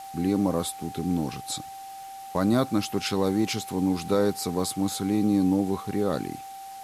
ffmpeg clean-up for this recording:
-af "adeclick=t=4,bandreject=f=780:w=30,afwtdn=0.0035"

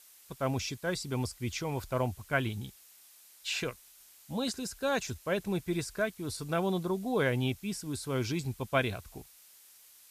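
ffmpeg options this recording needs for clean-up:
-af "adeclick=t=4,afftdn=nr=21:nf=-58"

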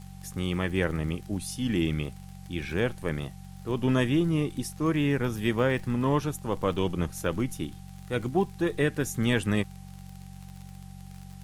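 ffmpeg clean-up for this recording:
-af "adeclick=t=4,bandreject=f=46.4:t=h:w=4,bandreject=f=92.8:t=h:w=4,bandreject=f=139.2:t=h:w=4,bandreject=f=185.6:t=h:w=4,bandreject=f=780:w=30,agate=range=-21dB:threshold=-36dB"

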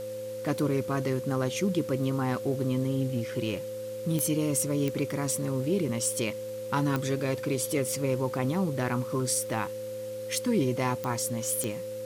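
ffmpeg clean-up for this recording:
-af "adeclick=t=4,bandreject=f=109.1:t=h:w=4,bandreject=f=218.2:t=h:w=4,bandreject=f=327.3:t=h:w=4,bandreject=f=436.4:t=h:w=4,bandreject=f=545.5:t=h:w=4,bandreject=f=520:w=30,afwtdn=0.0028"

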